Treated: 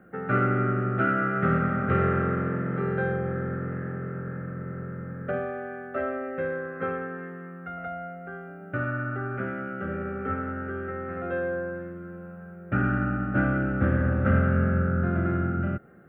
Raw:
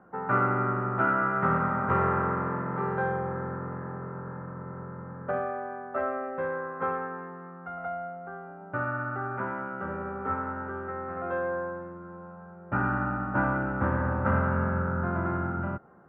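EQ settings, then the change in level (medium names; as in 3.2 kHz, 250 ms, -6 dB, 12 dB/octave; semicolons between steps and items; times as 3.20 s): treble shelf 2.7 kHz +9.5 dB; dynamic bell 2.1 kHz, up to -5 dB, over -41 dBFS, Q 1.2; static phaser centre 2.3 kHz, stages 4; +5.5 dB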